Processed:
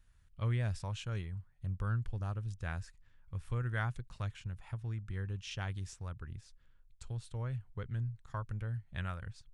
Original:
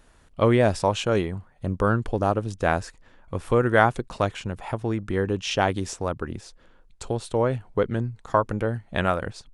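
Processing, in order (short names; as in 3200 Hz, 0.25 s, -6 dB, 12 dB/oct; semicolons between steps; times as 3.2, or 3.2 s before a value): EQ curve 120 Hz 0 dB, 280 Hz -19 dB, 680 Hz -20 dB, 1600 Hz -9 dB; gain -7 dB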